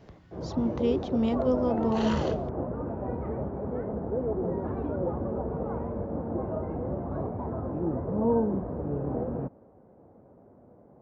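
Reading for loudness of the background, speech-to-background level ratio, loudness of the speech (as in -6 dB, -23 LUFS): -32.0 LUFS, 3.5 dB, -28.5 LUFS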